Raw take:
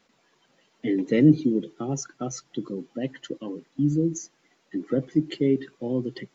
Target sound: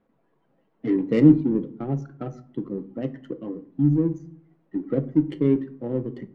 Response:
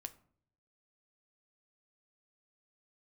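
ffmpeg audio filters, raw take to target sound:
-filter_complex "[0:a]lowshelf=f=95:g=6.5,adynamicsmooth=sensitivity=1.5:basefreq=1k[a];[1:a]atrim=start_sample=2205[b];[a][b]afir=irnorm=-1:irlink=0,volume=4.5dB"

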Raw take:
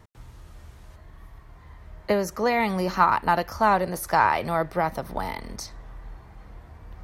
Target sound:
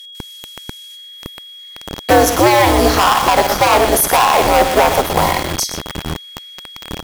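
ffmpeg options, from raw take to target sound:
-filter_complex "[0:a]adynamicequalizer=threshold=0.0158:dfrequency=650:dqfactor=1.6:tfrequency=650:tqfactor=1.6:attack=5:release=100:ratio=0.375:range=4:mode=boostabove:tftype=bell,asoftclip=type=hard:threshold=-18.5dB,asplit=2[a][b];[b]aecho=0:1:54|120:0.224|0.299[c];[a][c]amix=inputs=2:normalize=0,aeval=exprs='val(0)*sin(2*PI*120*n/s)':c=same,aeval=exprs='val(0)+0.00316*sin(2*PI*3300*n/s)':c=same,aemphasis=mode=production:type=cd,acrossover=split=2300[d][e];[d]acrusher=bits=5:mix=0:aa=0.000001[f];[f][e]amix=inputs=2:normalize=0,alimiter=level_in=17dB:limit=-1dB:release=50:level=0:latency=1,volume=-1dB"

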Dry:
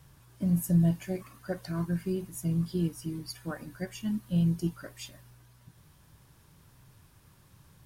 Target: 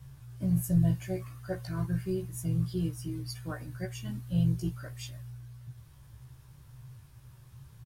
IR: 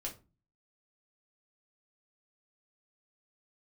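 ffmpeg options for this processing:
-filter_complex "[0:a]lowshelf=f=160:t=q:w=3:g=6,asplit=2[a][b];[b]adelay=16,volume=-3dB[c];[a][c]amix=inputs=2:normalize=0,volume=-3dB"

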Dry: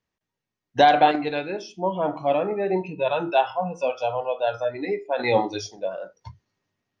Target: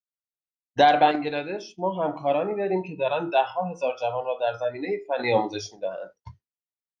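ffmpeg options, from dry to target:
-af "agate=range=-33dB:threshold=-39dB:ratio=3:detection=peak,volume=-1.5dB"

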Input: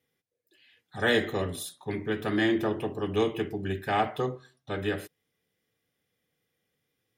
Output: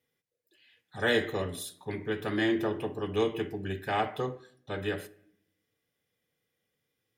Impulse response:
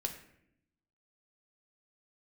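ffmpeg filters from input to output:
-filter_complex "[0:a]asplit=2[a][b];[1:a]atrim=start_sample=2205,lowshelf=f=170:g=-8.5[c];[b][c]afir=irnorm=-1:irlink=0,volume=-8.5dB[d];[a][d]amix=inputs=2:normalize=0,volume=-4.5dB"

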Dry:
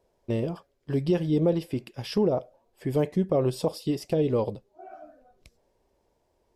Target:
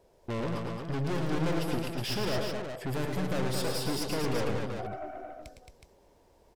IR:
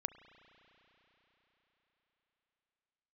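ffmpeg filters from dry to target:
-filter_complex "[0:a]aeval=exprs='(tanh(89.1*val(0)+0.4)-tanh(0.4))/89.1':c=same,asplit=2[a][b];[b]aecho=0:1:109|119|221|369:0.473|0.133|0.562|0.473[c];[a][c]amix=inputs=2:normalize=0,volume=7.5dB"

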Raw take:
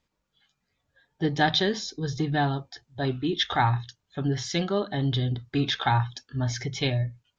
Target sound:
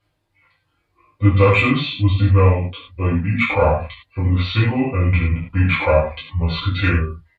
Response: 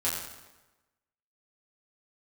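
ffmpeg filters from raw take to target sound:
-filter_complex "[0:a]asetrate=28595,aresample=44100,atempo=1.54221,acontrast=80[a];[1:a]atrim=start_sample=2205,atrim=end_sample=6615,asetrate=52920,aresample=44100[b];[a][b]afir=irnorm=-1:irlink=0,volume=-3.5dB"

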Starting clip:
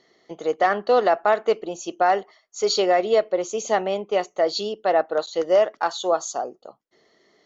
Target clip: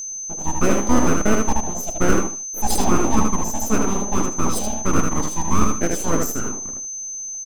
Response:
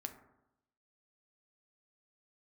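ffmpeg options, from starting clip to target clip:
-filter_complex "[0:a]bandreject=f=60:t=h:w=6,bandreject=f=120:t=h:w=6,bandreject=f=180:t=h:w=6,asplit=2[a][b];[b]adelay=78,lowpass=f=4.1k:p=1,volume=-3.5dB,asplit=2[c][d];[d]adelay=78,lowpass=f=4.1k:p=1,volume=0.24,asplit=2[e][f];[f]adelay=78,lowpass=f=4.1k:p=1,volume=0.24[g];[a][c][e][g]amix=inputs=4:normalize=0,asplit=2[h][i];[1:a]atrim=start_sample=2205,atrim=end_sample=3969[j];[i][j]afir=irnorm=-1:irlink=0,volume=-1.5dB[k];[h][k]amix=inputs=2:normalize=0,asplit=2[l][m];[m]asetrate=37084,aresample=44100,atempo=1.18921,volume=-8dB[n];[l][n]amix=inputs=2:normalize=0,aeval=exprs='abs(val(0))':c=same,equalizer=f=125:t=o:w=1:g=-7,equalizer=f=250:t=o:w=1:g=8,equalizer=f=500:t=o:w=1:g=6,equalizer=f=1k:t=o:w=1:g=-5,equalizer=f=2k:t=o:w=1:g=-8,equalizer=f=4k:t=o:w=1:g=-11,aeval=exprs='val(0)+0.0316*sin(2*PI*6200*n/s)':c=same,highshelf=f=4.3k:g=5,volume=-1dB"

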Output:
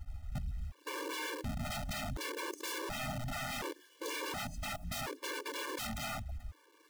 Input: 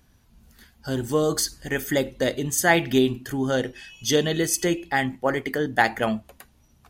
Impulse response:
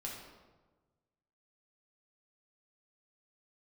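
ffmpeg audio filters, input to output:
-filter_complex "[0:a]asettb=1/sr,asplit=3[a][b][c];[a]atrim=end=1.234[d];[b]atrim=start=1.23:end=1.95,asetpts=PTS-STARTPTS,afade=t=in:d=0.004:c=qsin,afade=t=out:st=0.716:d=0.004:c=qsin,lowpass=f=2.2k:w=0.5412,lowpass=f=2.2k:w=1.3066[e];[c]atrim=start=1.946[f];[d][e]acrossfade=d=0.004:c1=hsin:c2=qsin[g];[g][f]acrossfade=d=0.004:c1=qsin:c2=hsin,asettb=1/sr,asplit=3[h][i][j];[h]atrim=end=2.964[k];[i]atrim=start=2.96:end=3.91,asetpts=PTS-STARTPTS,afade=t=in:d=0.004:c=qsin,afade=t=out:st=0.946:d=0.004:c=qsin,bandreject=f=60:t=h:w=6,bandreject=f=120:t=h:w=6,bandreject=f=180:t=h:w=6,bandreject=f=240:t=h:w=6,bandreject=f=300:t=h:w=6,bandreject=f=360:t=h:w=6,bandreject=f=420:t=h:w=6[l];[j]atrim=start=3.906[m];[k][l]acrossfade=d=0.004:c1=hsin:c2=qsin[n];[n][m]acrossfade=d=0.004:c1=qsin:c2=hsin,aemphasis=mode=reproduction:type=riaa,afwtdn=0.0282,asplit=3[o][p][q];[o]afade=t=out:st=5.19:d=0.02[r];[p]equalizer=f=1.5k:w=0.66:g=-12,afade=t=in:st=5.19:d=0.02,afade=t=out:st=5.79:d=0.02[s];[q]afade=t=in:st=5.79:d=0.02[t];[r][s][t]amix=inputs=3:normalize=0,acompressor=threshold=-24dB:ratio=12,aeval=exprs='(mod(37.6*val(0)+1,2)-1)/37.6':c=same,acrusher=bits=9:mix=0:aa=0.000001,asoftclip=type=tanh:threshold=-36dB,afftfilt=real='re*gt(sin(2*PI*0.69*pts/sr)*(1-2*mod(floor(b*sr/1024/300),2)),0)':imag='im*gt(sin(2*PI*0.69*pts/sr)*(1-2*mod(floor(b*sr/1024/300),2)),0)':win_size=1024:overlap=0.75,volume=3.5dB"

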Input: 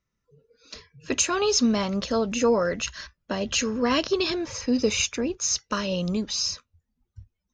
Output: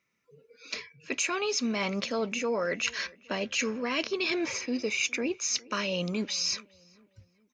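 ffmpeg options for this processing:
-filter_complex "[0:a]highpass=200,equalizer=f=2.3k:t=o:w=0.37:g=13.5,areverse,acompressor=threshold=-31dB:ratio=6,areverse,asplit=2[a][b];[b]adelay=411,lowpass=f=1.9k:p=1,volume=-23dB,asplit=2[c][d];[d]adelay=411,lowpass=f=1.9k:p=1,volume=0.43,asplit=2[e][f];[f]adelay=411,lowpass=f=1.9k:p=1,volume=0.43[g];[a][c][e][g]amix=inputs=4:normalize=0,volume=3.5dB"

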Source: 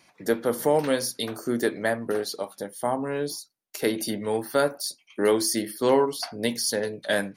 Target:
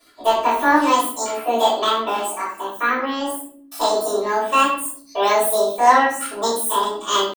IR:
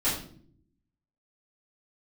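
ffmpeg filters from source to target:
-filter_complex "[0:a]asetrate=85689,aresample=44100,atempo=0.514651,aecho=1:1:3:0.43[a];[1:a]atrim=start_sample=2205[b];[a][b]afir=irnorm=-1:irlink=0,volume=-3.5dB"

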